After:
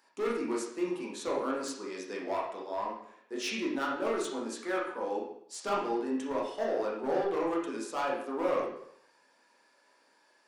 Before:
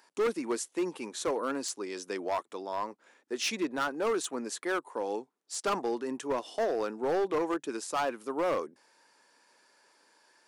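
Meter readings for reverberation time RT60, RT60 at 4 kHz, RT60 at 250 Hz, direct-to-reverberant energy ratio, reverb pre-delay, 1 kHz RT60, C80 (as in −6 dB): 0.65 s, 0.60 s, 0.65 s, −4.0 dB, 7 ms, 0.65 s, 7.0 dB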